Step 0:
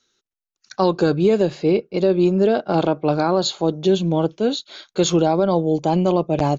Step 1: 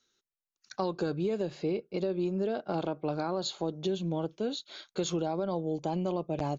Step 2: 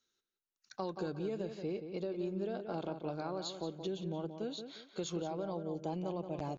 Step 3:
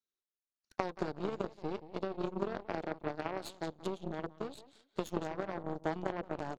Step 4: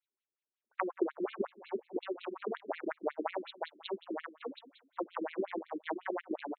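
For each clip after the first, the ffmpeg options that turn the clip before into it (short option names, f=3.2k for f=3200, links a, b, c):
-af "acompressor=threshold=-23dB:ratio=2.5,volume=-7.5dB"
-filter_complex "[0:a]asplit=2[a][b];[b]adelay=177,lowpass=f=3.2k:p=1,volume=-8dB,asplit=2[c][d];[d]adelay=177,lowpass=f=3.2k:p=1,volume=0.29,asplit=2[e][f];[f]adelay=177,lowpass=f=3.2k:p=1,volume=0.29[g];[a][c][e][g]amix=inputs=4:normalize=0,volume=-7.5dB"
-af "aeval=exprs='0.0631*(cos(1*acos(clip(val(0)/0.0631,-1,1)))-cos(1*PI/2))+0.02*(cos(3*acos(clip(val(0)/0.0631,-1,1)))-cos(3*PI/2))+0.00141*(cos(8*acos(clip(val(0)/0.0631,-1,1)))-cos(8*PI/2))':c=same,equalizer=f=430:t=o:w=2.9:g=4,bandreject=f=500:w=14,volume=9dB"
-af "afftfilt=real='re*between(b*sr/1024,280*pow(3100/280,0.5+0.5*sin(2*PI*5.5*pts/sr))/1.41,280*pow(3100/280,0.5+0.5*sin(2*PI*5.5*pts/sr))*1.41)':imag='im*between(b*sr/1024,280*pow(3100/280,0.5+0.5*sin(2*PI*5.5*pts/sr))/1.41,280*pow(3100/280,0.5+0.5*sin(2*PI*5.5*pts/sr))*1.41)':win_size=1024:overlap=0.75,volume=7.5dB"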